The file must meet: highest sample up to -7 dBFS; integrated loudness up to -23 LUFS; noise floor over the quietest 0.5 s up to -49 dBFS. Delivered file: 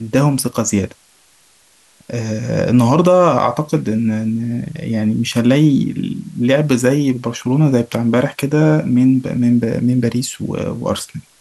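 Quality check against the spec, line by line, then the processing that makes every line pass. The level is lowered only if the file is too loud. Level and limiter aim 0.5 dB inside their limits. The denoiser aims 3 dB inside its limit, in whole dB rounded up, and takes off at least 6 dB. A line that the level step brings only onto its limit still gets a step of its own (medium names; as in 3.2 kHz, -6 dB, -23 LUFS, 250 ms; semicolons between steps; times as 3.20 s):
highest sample -2.0 dBFS: fail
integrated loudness -16.0 LUFS: fail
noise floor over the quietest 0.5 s -52 dBFS: pass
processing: trim -7.5 dB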